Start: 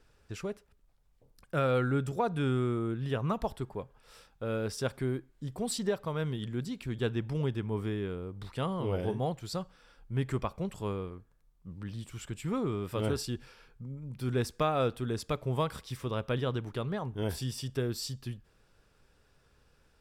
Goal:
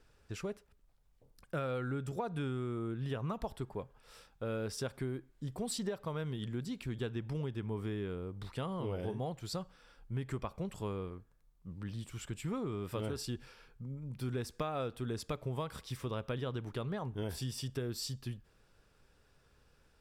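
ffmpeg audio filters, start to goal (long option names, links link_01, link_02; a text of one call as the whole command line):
ffmpeg -i in.wav -af "acompressor=threshold=-32dB:ratio=6,volume=-1.5dB" out.wav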